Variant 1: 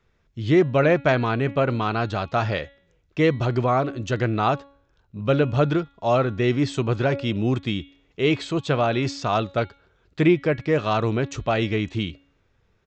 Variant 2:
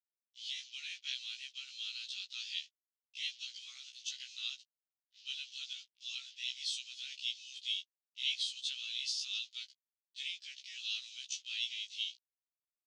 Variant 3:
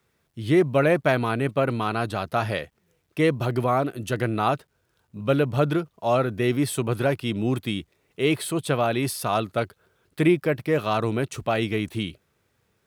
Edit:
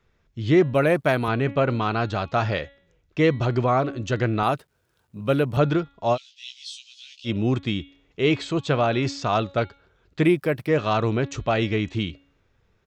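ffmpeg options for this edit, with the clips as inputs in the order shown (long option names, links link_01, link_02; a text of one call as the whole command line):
ffmpeg -i take0.wav -i take1.wav -i take2.wav -filter_complex "[2:a]asplit=3[link_01][link_02][link_03];[0:a]asplit=5[link_04][link_05][link_06][link_07][link_08];[link_04]atrim=end=0.742[link_09];[link_01]atrim=start=0.738:end=1.282[link_10];[link_05]atrim=start=1.278:end=4.432[link_11];[link_02]atrim=start=4.428:end=5.572[link_12];[link_06]atrim=start=5.568:end=6.18[link_13];[1:a]atrim=start=6.12:end=7.3[link_14];[link_07]atrim=start=7.24:end=10.28[link_15];[link_03]atrim=start=10.22:end=10.71[link_16];[link_08]atrim=start=10.65[link_17];[link_09][link_10]acrossfade=duration=0.004:curve1=hsin:curve2=hsin[link_18];[link_18][link_11]acrossfade=duration=0.004:curve1=hsin:curve2=hsin[link_19];[link_19][link_12]acrossfade=duration=0.004:curve1=hsin:curve2=hsin[link_20];[link_20][link_13]acrossfade=duration=0.004:curve1=hsin:curve2=hsin[link_21];[link_21][link_14]acrossfade=duration=0.06:curve1=tri:curve2=tri[link_22];[link_22][link_15]acrossfade=duration=0.06:curve1=tri:curve2=tri[link_23];[link_23][link_16]acrossfade=duration=0.06:curve1=tri:curve2=tri[link_24];[link_24][link_17]acrossfade=duration=0.06:curve1=tri:curve2=tri" out.wav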